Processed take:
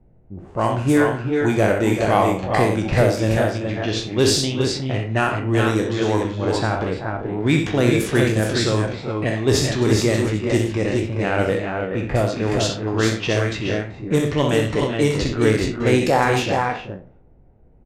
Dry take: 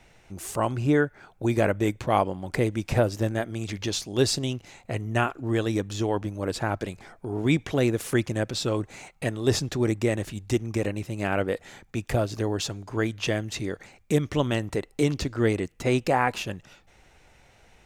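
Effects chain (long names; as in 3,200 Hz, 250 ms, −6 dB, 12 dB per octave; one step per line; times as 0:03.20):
peak hold with a decay on every bin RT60 0.42 s
in parallel at −5 dB: hard clipping −16 dBFS, distortion −17 dB
on the sum: multi-tap delay 64/91/384/406/422 ms −7.5/−13/−10/−14.5/−4.5 dB
low-pass that shuts in the quiet parts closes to 330 Hz, open at −14 dBFS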